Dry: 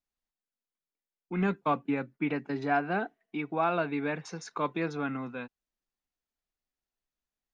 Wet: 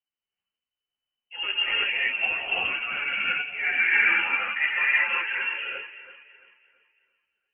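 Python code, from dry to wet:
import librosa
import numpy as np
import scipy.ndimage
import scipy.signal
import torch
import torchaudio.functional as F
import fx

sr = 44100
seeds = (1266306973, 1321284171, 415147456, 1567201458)

p1 = fx.spec_box(x, sr, start_s=3.47, length_s=1.72, low_hz=570.0, high_hz=2200.0, gain_db=9)
p2 = fx.rider(p1, sr, range_db=10, speed_s=0.5)
p3 = p1 + (p2 * librosa.db_to_amplitude(-2.0))
p4 = p3 * (1.0 - 0.55 / 2.0 + 0.55 / 2.0 * np.cos(2.0 * np.pi * 1.3 * (np.arange(len(p3)) / sr)))
p5 = p4 + fx.echo_alternate(p4, sr, ms=169, hz=830.0, feedback_pct=62, wet_db=-9.5, dry=0)
p6 = fx.rev_gated(p5, sr, seeds[0], gate_ms=400, shape='rising', drr_db=-8.0)
p7 = fx.freq_invert(p6, sr, carrier_hz=3000)
p8 = fx.ensemble(p7, sr)
y = p8 * librosa.db_to_amplitude(-6.0)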